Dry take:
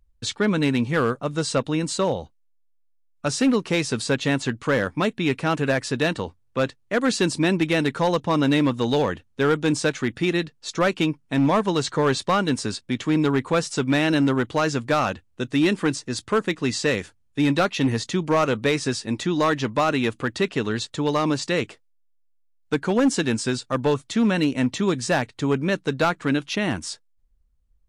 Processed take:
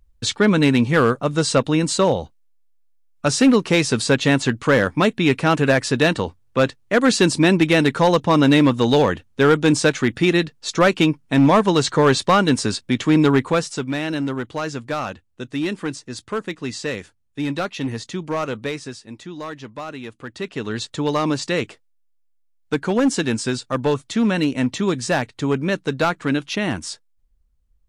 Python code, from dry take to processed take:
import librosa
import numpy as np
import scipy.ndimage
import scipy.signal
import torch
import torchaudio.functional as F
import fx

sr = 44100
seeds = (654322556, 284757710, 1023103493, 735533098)

y = fx.gain(x, sr, db=fx.line((13.37, 5.5), (13.92, -4.0), (18.62, -4.0), (19.04, -11.0), (20.12, -11.0), (20.86, 1.5)))